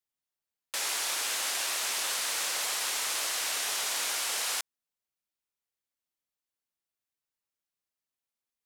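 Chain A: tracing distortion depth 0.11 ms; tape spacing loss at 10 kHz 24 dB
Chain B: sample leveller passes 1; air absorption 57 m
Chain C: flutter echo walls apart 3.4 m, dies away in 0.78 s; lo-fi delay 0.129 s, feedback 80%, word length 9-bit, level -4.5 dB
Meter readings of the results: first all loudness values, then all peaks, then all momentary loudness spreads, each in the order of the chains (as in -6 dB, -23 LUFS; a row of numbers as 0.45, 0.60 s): -39.0, -29.0, -21.5 LUFS; -25.5, -20.0, -11.0 dBFS; 3, 3, 11 LU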